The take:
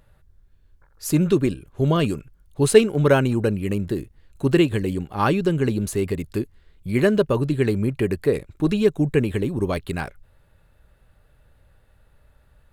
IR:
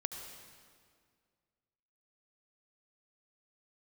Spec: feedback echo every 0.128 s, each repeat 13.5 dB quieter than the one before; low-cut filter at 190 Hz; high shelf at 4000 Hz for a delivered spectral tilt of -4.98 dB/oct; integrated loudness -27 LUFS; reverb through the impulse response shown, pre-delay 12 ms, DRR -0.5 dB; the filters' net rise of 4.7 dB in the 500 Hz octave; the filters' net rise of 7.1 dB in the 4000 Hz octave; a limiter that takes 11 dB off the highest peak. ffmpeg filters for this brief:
-filter_complex "[0:a]highpass=190,equalizer=f=500:t=o:g=6,highshelf=f=4k:g=4.5,equalizer=f=4k:t=o:g=7,alimiter=limit=-8dB:level=0:latency=1,aecho=1:1:128|256:0.211|0.0444,asplit=2[a][b];[1:a]atrim=start_sample=2205,adelay=12[c];[b][c]afir=irnorm=-1:irlink=0,volume=0.5dB[d];[a][d]amix=inputs=2:normalize=0,volume=-9dB"

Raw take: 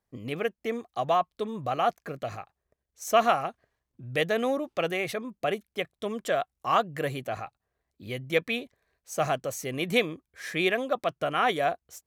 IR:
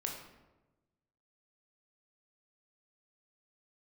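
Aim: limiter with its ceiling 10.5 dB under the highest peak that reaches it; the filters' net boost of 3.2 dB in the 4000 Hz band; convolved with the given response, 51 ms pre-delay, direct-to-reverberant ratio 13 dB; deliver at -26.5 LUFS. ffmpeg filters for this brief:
-filter_complex "[0:a]equalizer=f=4k:t=o:g=4.5,alimiter=limit=-17.5dB:level=0:latency=1,asplit=2[a][b];[1:a]atrim=start_sample=2205,adelay=51[c];[b][c]afir=irnorm=-1:irlink=0,volume=-14dB[d];[a][d]amix=inputs=2:normalize=0,volume=4.5dB"

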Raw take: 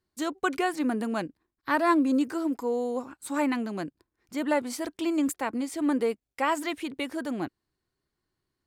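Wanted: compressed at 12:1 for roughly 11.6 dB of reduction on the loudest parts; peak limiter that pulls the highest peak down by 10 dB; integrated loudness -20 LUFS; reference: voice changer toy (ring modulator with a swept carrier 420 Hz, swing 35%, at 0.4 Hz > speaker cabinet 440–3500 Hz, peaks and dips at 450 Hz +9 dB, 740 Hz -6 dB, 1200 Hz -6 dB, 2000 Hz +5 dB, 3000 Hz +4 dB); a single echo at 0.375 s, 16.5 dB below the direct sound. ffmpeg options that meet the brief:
-af "acompressor=threshold=-31dB:ratio=12,alimiter=level_in=6.5dB:limit=-24dB:level=0:latency=1,volume=-6.5dB,aecho=1:1:375:0.15,aeval=exprs='val(0)*sin(2*PI*420*n/s+420*0.35/0.4*sin(2*PI*0.4*n/s))':c=same,highpass=440,equalizer=f=450:t=q:w=4:g=9,equalizer=f=740:t=q:w=4:g=-6,equalizer=f=1.2k:t=q:w=4:g=-6,equalizer=f=2k:t=q:w=4:g=5,equalizer=f=3k:t=q:w=4:g=4,lowpass=f=3.5k:w=0.5412,lowpass=f=3.5k:w=1.3066,volume=26dB"

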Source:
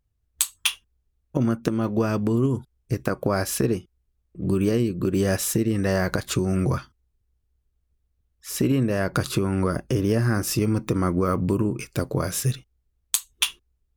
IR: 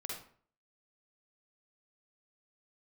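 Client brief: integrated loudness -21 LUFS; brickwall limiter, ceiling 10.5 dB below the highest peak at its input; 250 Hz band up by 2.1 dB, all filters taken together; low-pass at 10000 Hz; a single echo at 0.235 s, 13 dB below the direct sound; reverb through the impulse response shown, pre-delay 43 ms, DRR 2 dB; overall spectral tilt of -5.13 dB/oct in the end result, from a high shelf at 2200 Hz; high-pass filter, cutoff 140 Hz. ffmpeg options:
-filter_complex "[0:a]highpass=140,lowpass=10k,equalizer=f=250:t=o:g=3.5,highshelf=f=2.2k:g=3,alimiter=limit=-13dB:level=0:latency=1,aecho=1:1:235:0.224,asplit=2[a][b];[1:a]atrim=start_sample=2205,adelay=43[c];[b][c]afir=irnorm=-1:irlink=0,volume=-1.5dB[d];[a][d]amix=inputs=2:normalize=0,volume=2dB"

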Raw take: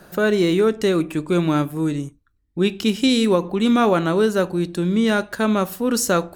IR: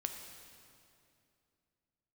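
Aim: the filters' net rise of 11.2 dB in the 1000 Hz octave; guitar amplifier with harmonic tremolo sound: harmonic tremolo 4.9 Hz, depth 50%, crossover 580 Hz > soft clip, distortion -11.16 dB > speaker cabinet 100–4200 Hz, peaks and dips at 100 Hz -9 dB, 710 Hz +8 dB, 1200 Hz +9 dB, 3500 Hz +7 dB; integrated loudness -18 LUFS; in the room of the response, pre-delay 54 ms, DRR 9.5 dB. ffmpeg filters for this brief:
-filter_complex "[0:a]equalizer=f=1k:t=o:g=6,asplit=2[a][b];[1:a]atrim=start_sample=2205,adelay=54[c];[b][c]afir=irnorm=-1:irlink=0,volume=-9.5dB[d];[a][d]amix=inputs=2:normalize=0,acrossover=split=580[e][f];[e]aeval=exprs='val(0)*(1-0.5/2+0.5/2*cos(2*PI*4.9*n/s))':c=same[g];[f]aeval=exprs='val(0)*(1-0.5/2-0.5/2*cos(2*PI*4.9*n/s))':c=same[h];[g][h]amix=inputs=2:normalize=0,asoftclip=threshold=-17.5dB,highpass=100,equalizer=f=100:t=q:w=4:g=-9,equalizer=f=710:t=q:w=4:g=8,equalizer=f=1.2k:t=q:w=4:g=9,equalizer=f=3.5k:t=q:w=4:g=7,lowpass=f=4.2k:w=0.5412,lowpass=f=4.2k:w=1.3066,volume=4dB"

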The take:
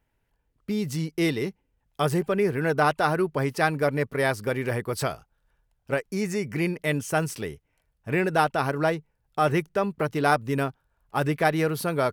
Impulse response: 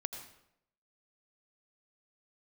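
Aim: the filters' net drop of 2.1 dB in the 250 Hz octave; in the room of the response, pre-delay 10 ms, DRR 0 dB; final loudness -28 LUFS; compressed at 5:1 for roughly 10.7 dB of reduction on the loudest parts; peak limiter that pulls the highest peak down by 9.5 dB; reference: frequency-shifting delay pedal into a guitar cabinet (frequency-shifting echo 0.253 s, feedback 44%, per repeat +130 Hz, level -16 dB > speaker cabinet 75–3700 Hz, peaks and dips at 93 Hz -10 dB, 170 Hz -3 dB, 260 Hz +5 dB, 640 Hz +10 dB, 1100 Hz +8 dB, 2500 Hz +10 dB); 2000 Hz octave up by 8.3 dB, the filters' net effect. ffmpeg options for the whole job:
-filter_complex "[0:a]equalizer=f=250:t=o:g=-5,equalizer=f=2k:t=o:g=6.5,acompressor=threshold=-27dB:ratio=5,alimiter=limit=-23dB:level=0:latency=1,asplit=2[a][b];[1:a]atrim=start_sample=2205,adelay=10[c];[b][c]afir=irnorm=-1:irlink=0,volume=0dB[d];[a][d]amix=inputs=2:normalize=0,asplit=5[e][f][g][h][i];[f]adelay=253,afreqshift=130,volume=-16dB[j];[g]adelay=506,afreqshift=260,volume=-23.1dB[k];[h]adelay=759,afreqshift=390,volume=-30.3dB[l];[i]adelay=1012,afreqshift=520,volume=-37.4dB[m];[e][j][k][l][m]amix=inputs=5:normalize=0,highpass=75,equalizer=f=93:t=q:w=4:g=-10,equalizer=f=170:t=q:w=4:g=-3,equalizer=f=260:t=q:w=4:g=5,equalizer=f=640:t=q:w=4:g=10,equalizer=f=1.1k:t=q:w=4:g=8,equalizer=f=2.5k:t=q:w=4:g=10,lowpass=f=3.7k:w=0.5412,lowpass=f=3.7k:w=1.3066"

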